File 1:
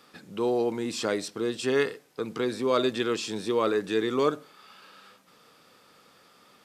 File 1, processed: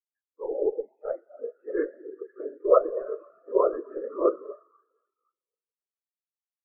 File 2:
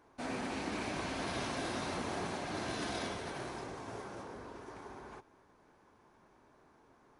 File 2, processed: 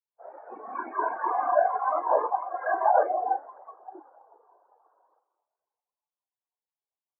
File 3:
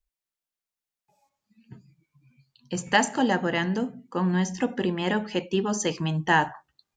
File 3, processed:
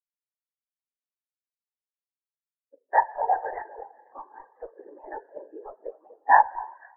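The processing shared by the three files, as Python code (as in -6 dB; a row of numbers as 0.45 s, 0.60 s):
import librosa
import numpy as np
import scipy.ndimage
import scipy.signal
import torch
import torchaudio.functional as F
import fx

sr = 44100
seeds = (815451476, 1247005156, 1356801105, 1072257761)

p1 = scipy.signal.sosfilt(scipy.signal.butter(4, 470.0, 'highpass', fs=sr, output='sos'), x)
p2 = p1 + fx.echo_alternate(p1, sr, ms=252, hz=1100.0, feedback_pct=63, wet_db=-8.5, dry=0)
p3 = fx.rev_spring(p2, sr, rt60_s=3.5, pass_ms=(40,), chirp_ms=35, drr_db=4.5)
p4 = fx.whisperise(p3, sr, seeds[0])
p5 = fx.noise_reduce_blind(p4, sr, reduce_db=7)
p6 = scipy.signal.sosfilt(scipy.signal.butter(4, 1800.0, 'lowpass', fs=sr, output='sos'), p5)
p7 = fx.schmitt(p6, sr, flips_db=-21.0)
p8 = p6 + (p7 * 10.0 ** (-9.0 / 20.0))
p9 = fx.spectral_expand(p8, sr, expansion=2.5)
y = p9 * 10.0 ** (-30 / 20.0) / np.sqrt(np.mean(np.square(p9)))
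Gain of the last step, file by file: +6.5 dB, +19.5 dB, +6.0 dB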